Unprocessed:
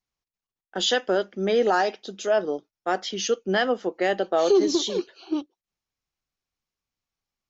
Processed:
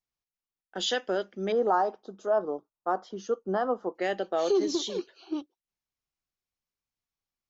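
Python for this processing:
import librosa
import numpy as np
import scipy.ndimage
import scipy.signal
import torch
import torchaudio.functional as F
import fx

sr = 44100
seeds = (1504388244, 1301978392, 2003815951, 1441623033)

y = fx.high_shelf_res(x, sr, hz=1600.0, db=-12.5, q=3.0, at=(1.52, 3.95))
y = y * 10.0 ** (-6.0 / 20.0)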